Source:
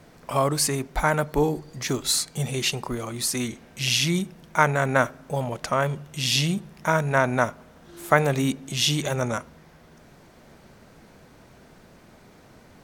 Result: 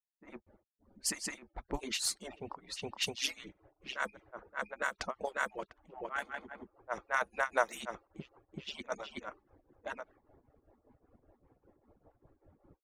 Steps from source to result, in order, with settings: harmonic-percussive separation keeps percussive; granulator 259 ms, grains 5.1 per s, spray 833 ms, pitch spread up and down by 0 st; level-controlled noise filter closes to 710 Hz, open at -25 dBFS; trim -5.5 dB

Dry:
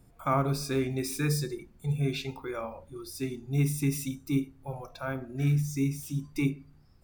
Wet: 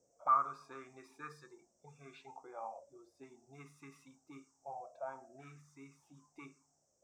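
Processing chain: band noise 5.5–8.3 kHz -45 dBFS; auto-wah 480–1200 Hz, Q 7.8, up, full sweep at -26 dBFS; trim +3 dB

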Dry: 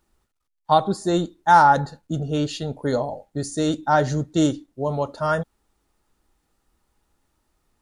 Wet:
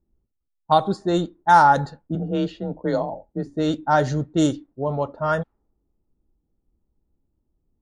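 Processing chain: 2.15–3.47 s: frequency shift +29 Hz; level-controlled noise filter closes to 330 Hz, open at -14.5 dBFS

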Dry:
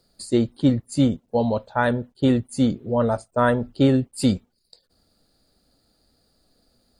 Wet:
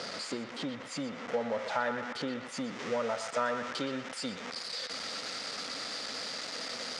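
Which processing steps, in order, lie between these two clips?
jump at every zero crossing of -25 dBFS; treble shelf 2.6 kHz +2 dB, from 2.71 s +11 dB; compression, threshold -24 dBFS, peak gain reduction 12 dB; cabinet simulation 270–5900 Hz, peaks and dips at 350 Hz -7 dB, 500 Hz +4 dB, 1.3 kHz +6 dB, 2 kHz +6 dB, 4.3 kHz -5 dB; band-passed feedback delay 121 ms, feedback 69%, band-pass 1.7 kHz, level -6 dB; trim -6 dB

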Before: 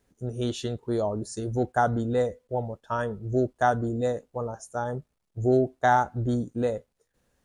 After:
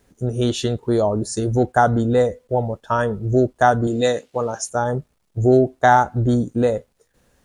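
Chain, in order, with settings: 3.87–4.70 s: frequency weighting D; in parallel at -3 dB: compression, threshold -30 dBFS, peak gain reduction 13.5 dB; on the sum: trim +6 dB

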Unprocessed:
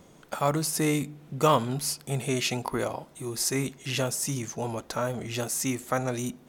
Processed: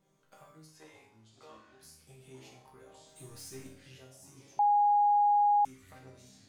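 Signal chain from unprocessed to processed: 0.66–1.83 s: three-band isolator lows -23 dB, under 420 Hz, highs -16 dB, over 5.5 kHz; compression, threshold -35 dBFS, peak gain reduction 15.5 dB; 3.06–3.67 s: waveshaping leveller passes 3; chord resonator C3 minor, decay 0.57 s; ever faster or slower copies 358 ms, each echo -6 st, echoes 3, each echo -6 dB; 4.59–5.65 s: bleep 824 Hz -21.5 dBFS

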